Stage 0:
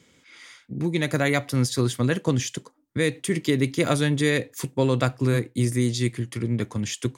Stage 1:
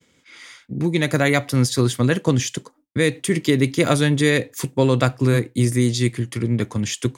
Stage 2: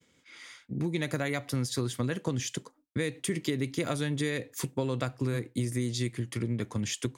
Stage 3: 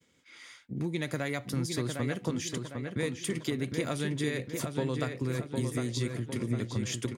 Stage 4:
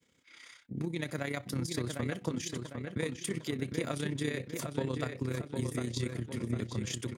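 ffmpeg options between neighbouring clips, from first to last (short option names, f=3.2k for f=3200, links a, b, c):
-af "agate=range=-33dB:threshold=-53dB:ratio=3:detection=peak,volume=4.5dB"
-af "acompressor=threshold=-20dB:ratio=6,volume=-6.5dB"
-filter_complex "[0:a]asplit=2[a][b];[b]adelay=756,lowpass=f=3.6k:p=1,volume=-5dB,asplit=2[c][d];[d]adelay=756,lowpass=f=3.6k:p=1,volume=0.49,asplit=2[e][f];[f]adelay=756,lowpass=f=3.6k:p=1,volume=0.49,asplit=2[g][h];[h]adelay=756,lowpass=f=3.6k:p=1,volume=0.49,asplit=2[i][j];[j]adelay=756,lowpass=f=3.6k:p=1,volume=0.49,asplit=2[k][l];[l]adelay=756,lowpass=f=3.6k:p=1,volume=0.49[m];[a][c][e][g][i][k][m]amix=inputs=7:normalize=0,volume=-2dB"
-af "tremolo=f=32:d=0.621"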